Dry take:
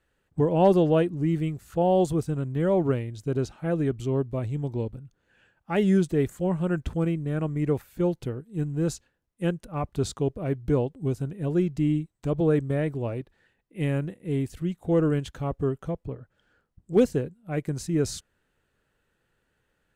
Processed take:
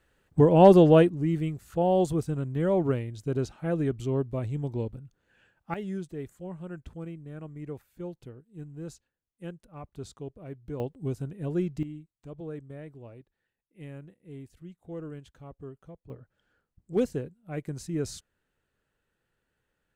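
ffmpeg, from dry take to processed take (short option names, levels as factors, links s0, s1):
-af "asetnsamples=n=441:p=0,asendcmd='1.09 volume volume -2dB;5.74 volume volume -13.5dB;10.8 volume volume -4.5dB;11.83 volume volume -16.5dB;16.1 volume volume -6dB',volume=1.58"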